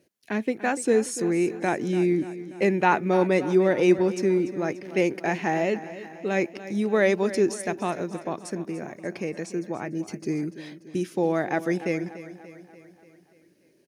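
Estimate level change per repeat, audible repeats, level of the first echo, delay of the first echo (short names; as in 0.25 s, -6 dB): -5.0 dB, 5, -14.5 dB, 0.291 s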